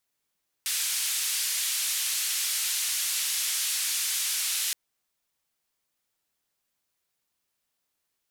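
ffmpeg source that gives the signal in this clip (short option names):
-f lavfi -i "anoisesrc=c=white:d=4.07:r=44100:seed=1,highpass=f=2400,lowpass=f=12000,volume=-20dB"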